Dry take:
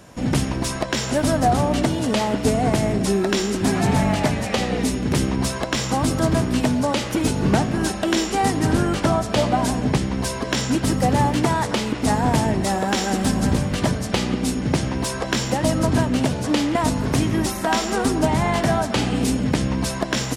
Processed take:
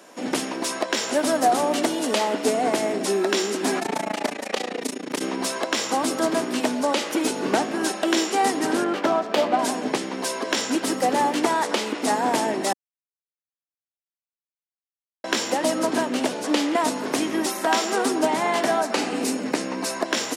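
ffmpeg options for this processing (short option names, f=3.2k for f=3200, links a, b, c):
-filter_complex "[0:a]asettb=1/sr,asplit=3[a][b][c];[a]atrim=end=1.354[d];[b]atrim=start=1.35:end=2.18,asetpts=PTS-STARTPTS,afade=t=in:d=0.004:c=qsin,afade=t=out:st=0.826:d=0.004:c=qsin,highshelf=f=8.1k:g=6.5[e];[c]atrim=start=2.176[f];[d][e]acrossfade=d=0.004:c1=hsin:c2=qsin[g];[g][f]acrossfade=d=0.004:c1=qsin:c2=hsin,asplit=3[h][i][j];[h]afade=t=out:st=3.79:d=0.02[k];[i]tremolo=f=28:d=0.947,afade=t=in:st=3.79:d=0.02,afade=t=out:st=5.2:d=0.02[l];[j]afade=t=in:st=5.2:d=0.02[m];[k][l][m]amix=inputs=3:normalize=0,asettb=1/sr,asplit=3[n][o][p];[n]atrim=end=8.844[q];[o]atrim=start=8.84:end=9.59,asetpts=PTS-STARTPTS,afade=t=in:d=0.004:c=qsin,afade=t=out:st=0.746:d=0.004:c=qsin,adynamicsmooth=sensitivity=2.5:basefreq=2k[r];[p]atrim=start=9.586[s];[q][r]acrossfade=d=0.004:c1=hsin:c2=qsin[t];[t][s]acrossfade=d=0.004:c1=qsin:c2=hsin,asettb=1/sr,asplit=3[u][v][w];[u]atrim=end=18.814[x];[v]atrim=start=18.81:end=20.06,asetpts=PTS-STARTPTS,afade=t=in:d=0.004:c=qsin,afade=t=out:st=1.246:d=0.004:c=qsin,equalizer=f=3.3k:t=o:w=0.24:g=-8[y];[w]atrim=start=20.056[z];[x][y]acrossfade=d=0.004:c1=hsin:c2=qsin[aa];[aa][z]acrossfade=d=0.004:c1=qsin:c2=hsin,asplit=3[ab][ac][ad];[ab]atrim=end=12.73,asetpts=PTS-STARTPTS,afade=t=out:st=12.726:d=0.004:c=hsin[ae];[ac]atrim=start=12.73:end=15.24,asetpts=PTS-STARTPTS,volume=0[af];[ad]atrim=start=15.24,asetpts=PTS-STARTPTS,afade=t=in:d=0.004:c=hsin[ag];[ae][af][ag]concat=n=3:v=0:a=1,highpass=f=280:w=0.5412,highpass=f=280:w=1.3066"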